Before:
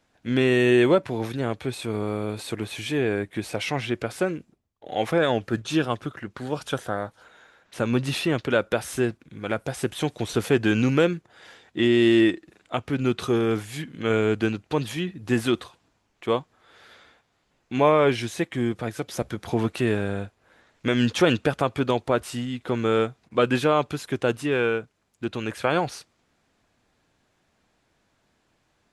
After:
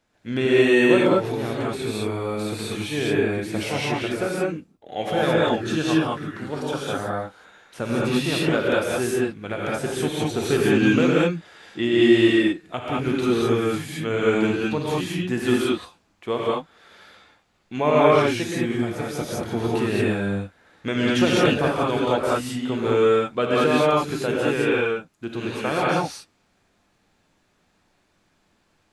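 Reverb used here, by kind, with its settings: gated-style reverb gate 240 ms rising, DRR -5.5 dB; trim -3.5 dB

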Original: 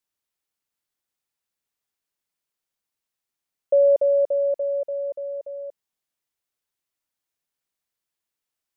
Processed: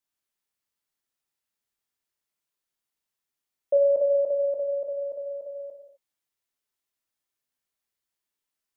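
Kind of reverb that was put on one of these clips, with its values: gated-style reverb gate 280 ms falling, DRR 0.5 dB; trim -4 dB

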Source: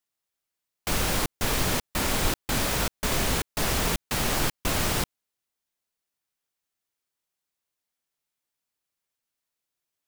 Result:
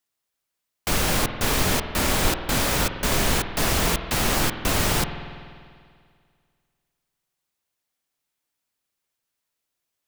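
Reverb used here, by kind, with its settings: spring tank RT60 2.1 s, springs 49 ms, chirp 60 ms, DRR 8 dB; trim +3.5 dB

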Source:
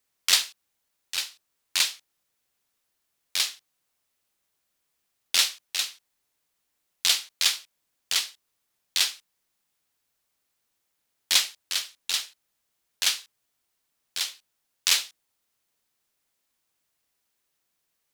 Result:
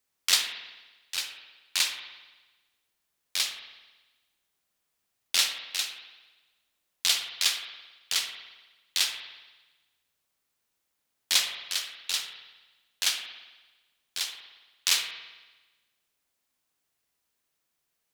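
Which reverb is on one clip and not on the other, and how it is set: spring tank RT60 1.2 s, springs 55 ms, chirp 65 ms, DRR 5.5 dB; trim -2.5 dB

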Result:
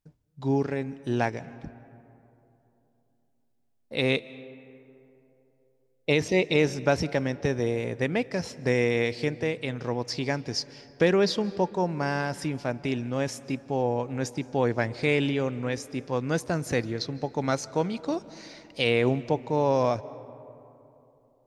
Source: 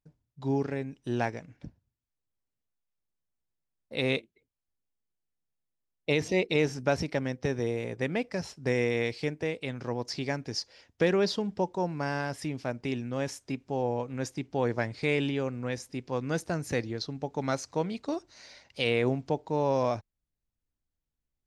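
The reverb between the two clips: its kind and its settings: algorithmic reverb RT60 3.1 s, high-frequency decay 0.4×, pre-delay 120 ms, DRR 18 dB; trim +3.5 dB

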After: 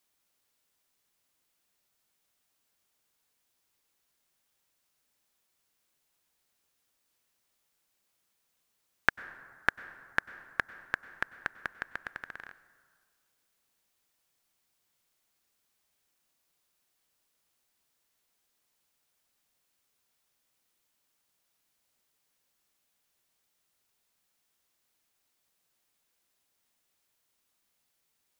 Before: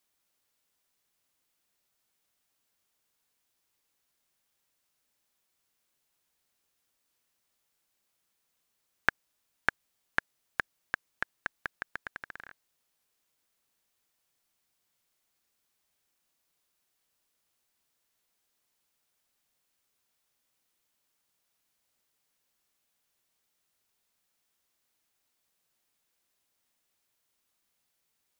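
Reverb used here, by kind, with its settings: plate-style reverb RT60 1.8 s, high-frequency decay 0.45×, pre-delay 85 ms, DRR 16 dB; trim +1 dB

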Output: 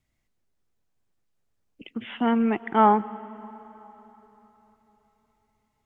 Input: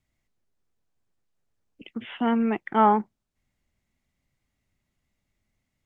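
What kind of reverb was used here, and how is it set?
plate-style reverb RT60 3.9 s, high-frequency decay 0.8×, pre-delay 85 ms, DRR 17.5 dB; trim +1 dB

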